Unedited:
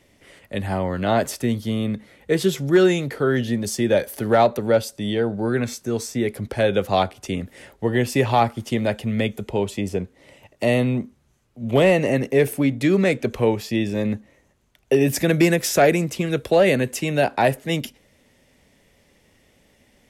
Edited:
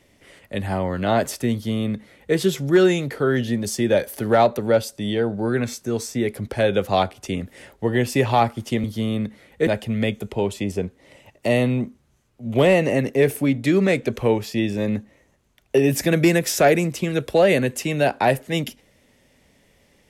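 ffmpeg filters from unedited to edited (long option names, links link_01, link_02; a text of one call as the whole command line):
ffmpeg -i in.wav -filter_complex "[0:a]asplit=3[link_01][link_02][link_03];[link_01]atrim=end=8.842[link_04];[link_02]atrim=start=1.528:end=2.362[link_05];[link_03]atrim=start=8.838[link_06];[link_04][link_05]acrossfade=duration=0.004:curve1=hsin:curve2=hsin[link_07];[link_07][link_06]acrossfade=duration=0.004:curve1=hsin:curve2=hsin" out.wav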